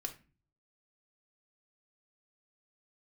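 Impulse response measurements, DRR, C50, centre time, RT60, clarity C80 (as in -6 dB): 2.5 dB, 13.0 dB, 9 ms, 0.30 s, 19.0 dB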